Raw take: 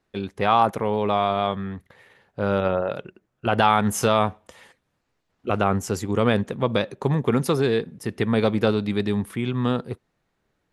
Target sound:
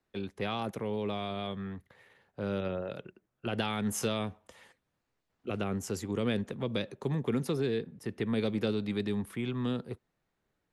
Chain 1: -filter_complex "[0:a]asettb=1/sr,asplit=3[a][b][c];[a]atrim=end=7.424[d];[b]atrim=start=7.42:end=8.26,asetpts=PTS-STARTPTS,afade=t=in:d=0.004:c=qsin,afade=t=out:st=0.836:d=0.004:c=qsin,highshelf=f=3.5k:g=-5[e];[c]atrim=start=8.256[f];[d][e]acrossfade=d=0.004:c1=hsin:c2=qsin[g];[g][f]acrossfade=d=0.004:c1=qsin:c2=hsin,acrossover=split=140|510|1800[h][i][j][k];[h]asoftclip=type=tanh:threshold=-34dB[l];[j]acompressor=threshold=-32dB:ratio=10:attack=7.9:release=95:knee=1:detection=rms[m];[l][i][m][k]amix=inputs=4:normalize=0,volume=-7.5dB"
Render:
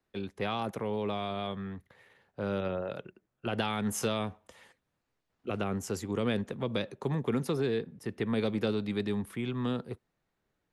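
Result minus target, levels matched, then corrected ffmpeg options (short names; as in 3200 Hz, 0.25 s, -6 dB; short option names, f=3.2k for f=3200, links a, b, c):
compressor: peak gain reduction -6 dB
-filter_complex "[0:a]asettb=1/sr,asplit=3[a][b][c];[a]atrim=end=7.424[d];[b]atrim=start=7.42:end=8.26,asetpts=PTS-STARTPTS,afade=t=in:d=0.004:c=qsin,afade=t=out:st=0.836:d=0.004:c=qsin,highshelf=f=3.5k:g=-5[e];[c]atrim=start=8.256[f];[d][e]acrossfade=d=0.004:c1=hsin:c2=qsin[g];[g][f]acrossfade=d=0.004:c1=qsin:c2=hsin,acrossover=split=140|510|1800[h][i][j][k];[h]asoftclip=type=tanh:threshold=-34dB[l];[j]acompressor=threshold=-38.5dB:ratio=10:attack=7.9:release=95:knee=1:detection=rms[m];[l][i][m][k]amix=inputs=4:normalize=0,volume=-7.5dB"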